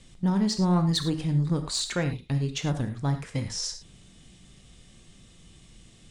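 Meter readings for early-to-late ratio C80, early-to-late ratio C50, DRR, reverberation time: 12.5 dB, 9.5 dB, 7.0 dB, non-exponential decay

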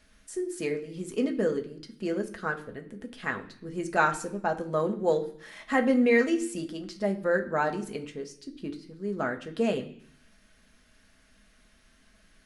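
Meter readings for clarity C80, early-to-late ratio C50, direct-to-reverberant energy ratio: 17.0 dB, 13.5 dB, 3.5 dB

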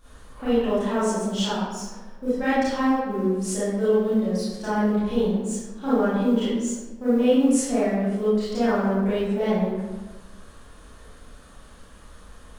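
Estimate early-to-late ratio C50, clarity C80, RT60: −4.0 dB, 1.0 dB, 1.2 s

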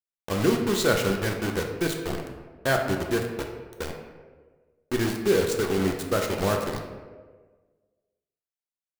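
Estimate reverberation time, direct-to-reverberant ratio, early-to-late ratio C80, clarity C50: 1.5 s, 1.5 dB, 7.0 dB, 5.0 dB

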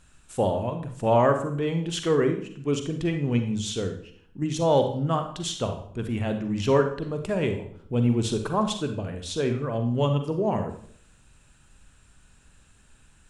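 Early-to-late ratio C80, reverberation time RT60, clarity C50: 11.5 dB, 0.60 s, 8.0 dB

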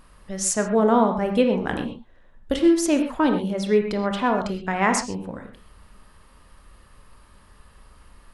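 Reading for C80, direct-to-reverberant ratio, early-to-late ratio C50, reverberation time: 9.0 dB, 4.5 dB, 6.5 dB, non-exponential decay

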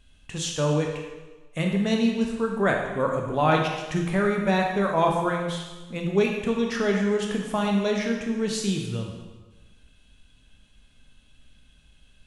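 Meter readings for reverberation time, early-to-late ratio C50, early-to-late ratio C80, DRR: 1.2 s, 3.5 dB, 5.5 dB, 0.5 dB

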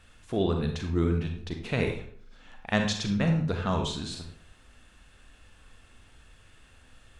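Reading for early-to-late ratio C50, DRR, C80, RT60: 6.0 dB, 3.5 dB, 9.5 dB, 0.55 s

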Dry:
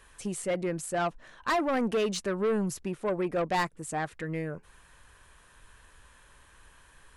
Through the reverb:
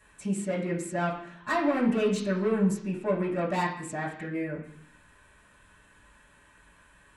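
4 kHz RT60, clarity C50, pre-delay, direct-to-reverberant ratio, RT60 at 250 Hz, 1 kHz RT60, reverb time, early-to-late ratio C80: 0.90 s, 6.0 dB, 3 ms, −9.5 dB, 1.0 s, 0.65 s, 0.65 s, 10.0 dB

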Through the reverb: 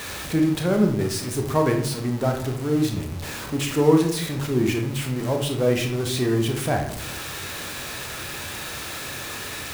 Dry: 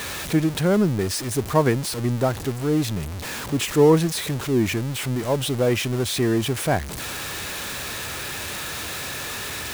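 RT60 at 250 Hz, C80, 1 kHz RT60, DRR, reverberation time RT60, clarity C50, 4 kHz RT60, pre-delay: 0.85 s, 10.5 dB, 0.65 s, 3.0 dB, 0.70 s, 6.5 dB, 0.40 s, 23 ms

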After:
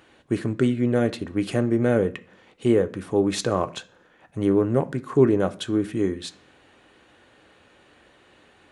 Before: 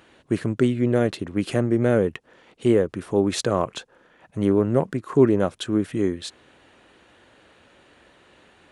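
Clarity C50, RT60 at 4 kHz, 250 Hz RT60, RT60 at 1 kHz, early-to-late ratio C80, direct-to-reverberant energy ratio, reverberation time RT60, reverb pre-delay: 19.0 dB, 0.50 s, 0.65 s, 0.40 s, 24.0 dB, 8.5 dB, 0.40 s, 3 ms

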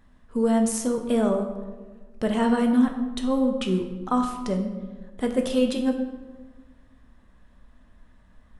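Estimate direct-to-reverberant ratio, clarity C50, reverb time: 3.5 dB, 7.0 dB, 1.4 s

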